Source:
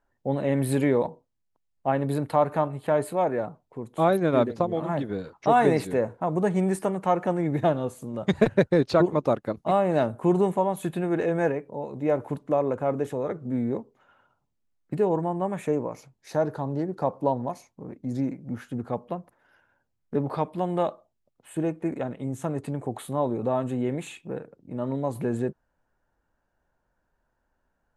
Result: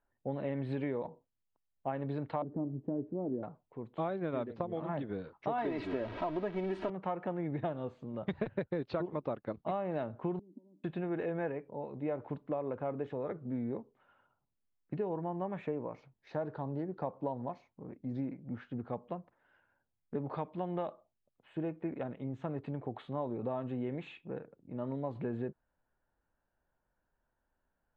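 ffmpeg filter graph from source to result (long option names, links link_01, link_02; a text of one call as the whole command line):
ffmpeg -i in.wav -filter_complex "[0:a]asettb=1/sr,asplit=3[link_01][link_02][link_03];[link_01]atrim=end=2.424[link_04];[link_02]atrim=start=2.42:end=3.43,asetpts=PTS-STARTPTS,afade=type=in:duration=0.004:curve=qsin,afade=type=out:start_time=1.006:duration=0.004:curve=qsin,lowpass=frequency=300:width_type=q:width=2.8,asplit=2[link_05][link_06];[link_06]adelay=16,volume=-13.5dB[link_07];[link_05][link_07]amix=inputs=2:normalize=0,atrim=end_sample=44541[link_08];[link_03]atrim=start=3.426[link_09];[link_04][link_08]acrossfade=duration=0.004:curve1=hsin:curve2=qsin[link_10];[link_10][link_09]acrossfade=duration=0.004:curve1=qsin:curve2=hsin,asettb=1/sr,asplit=3[link_11][link_12][link_13];[link_11]atrim=end=5.584[link_14];[link_12]atrim=start=5.58:end=6.9,asetpts=PTS-STARTPTS,afade=type=in:duration=0.004:curve=qsin,afade=type=out:start_time=1.316:duration=0.004:curve=qsin,aeval=exprs='val(0)+0.5*0.0335*sgn(val(0))':channel_layout=same,aecho=1:1:3.1:0.65,atrim=end_sample=58212[link_15];[link_13]atrim=start=6.896[link_16];[link_14][link_15]acrossfade=duration=0.004:curve1=hsin:curve2=qsin[link_17];[link_17][link_16]acrossfade=duration=0.004:curve1=qsin:curve2=hsin,asettb=1/sr,asplit=3[link_18][link_19][link_20];[link_18]atrim=end=10.394[link_21];[link_19]atrim=start=10.39:end=10.84,asetpts=PTS-STARTPTS,afade=type=in:duration=0.004:curve=qsin,afade=type=out:start_time=0.446:duration=0.004:curve=qsin,aecho=1:1:3.3:0.34,atrim=end_sample=19845,acompressor=threshold=-30dB:ratio=16:attack=3.2:release=140:knee=1:detection=peak,asuperpass=centerf=260:order=4:qfactor=3[link_22];[link_20]atrim=start=10.836[link_23];[link_21][link_22]acrossfade=duration=0.004:curve1=hsin:curve2=qsin[link_24];[link_24][link_23]acrossfade=duration=0.004:curve1=qsin:curve2=hsin,lowpass=frequency=3600:width=0.5412,lowpass=frequency=3600:width=1.3066,acompressor=threshold=-24dB:ratio=6,volume=-7.5dB" out.wav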